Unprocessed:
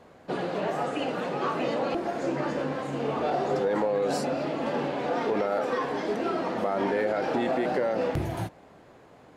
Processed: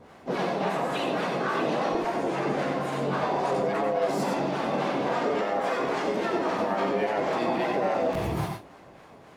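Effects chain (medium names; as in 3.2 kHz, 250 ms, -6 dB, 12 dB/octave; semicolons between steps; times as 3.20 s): harmonic tremolo 3.6 Hz, depth 70%, crossover 550 Hz; peak limiter -25 dBFS, peak gain reduction 5.5 dB; harmony voices +5 st -3 dB; on a send: reverberation RT60 0.20 s, pre-delay 85 ms, DRR 3.5 dB; on the sum: trim +3.5 dB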